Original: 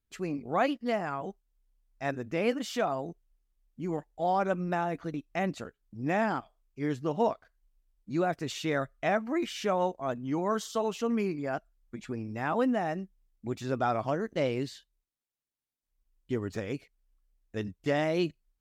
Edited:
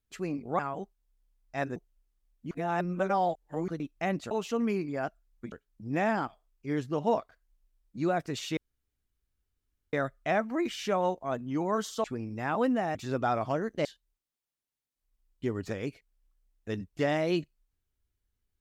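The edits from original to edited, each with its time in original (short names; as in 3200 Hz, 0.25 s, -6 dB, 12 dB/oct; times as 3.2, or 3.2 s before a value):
0.59–1.06 cut
2.23–3.1 cut
3.85–5.02 reverse
8.7 insert room tone 1.36 s
10.81–12.02 move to 5.65
12.93–13.53 cut
14.43–14.72 cut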